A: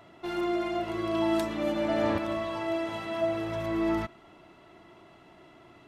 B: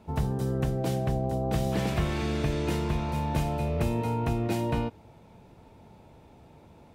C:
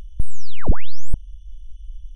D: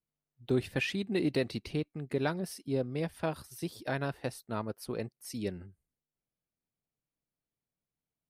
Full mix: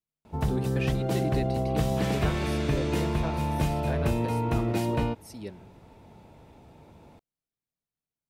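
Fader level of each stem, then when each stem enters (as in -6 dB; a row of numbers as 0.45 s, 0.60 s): -14.0 dB, +1.0 dB, mute, -4.0 dB; 0.70 s, 0.25 s, mute, 0.00 s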